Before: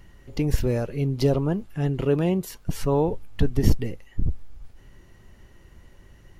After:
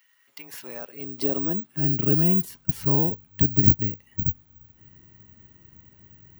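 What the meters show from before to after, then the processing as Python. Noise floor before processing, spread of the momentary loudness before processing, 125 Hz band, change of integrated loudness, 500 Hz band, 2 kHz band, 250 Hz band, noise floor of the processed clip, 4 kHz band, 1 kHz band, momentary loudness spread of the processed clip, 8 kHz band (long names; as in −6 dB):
−52 dBFS, 10 LU, −1.5 dB, +4.0 dB, −7.5 dB, −5.0 dB, −1.0 dB, −62 dBFS, −5.0 dB, −6.5 dB, 18 LU, −3.5 dB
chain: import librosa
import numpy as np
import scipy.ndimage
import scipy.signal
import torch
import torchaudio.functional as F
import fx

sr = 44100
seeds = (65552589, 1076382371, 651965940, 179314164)

y = fx.graphic_eq_10(x, sr, hz=(125, 250, 500), db=(5, 6, -6))
y = fx.filter_sweep_highpass(y, sr, from_hz=1900.0, to_hz=81.0, start_s=0.01, end_s=2.5, q=1.1)
y = (np.kron(y[::2], np.eye(2)[0]) * 2)[:len(y)]
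y = y * librosa.db_to_amplitude(-5.0)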